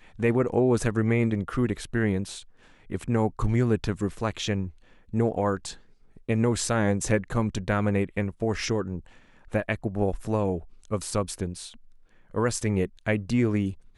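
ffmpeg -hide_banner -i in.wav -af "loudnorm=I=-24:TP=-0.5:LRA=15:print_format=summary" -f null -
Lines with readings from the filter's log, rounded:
Input Integrated:    -27.2 LUFS
Input True Peak:     -10.5 dBTP
Input LRA:             2.9 LU
Input Threshold:     -37.8 LUFS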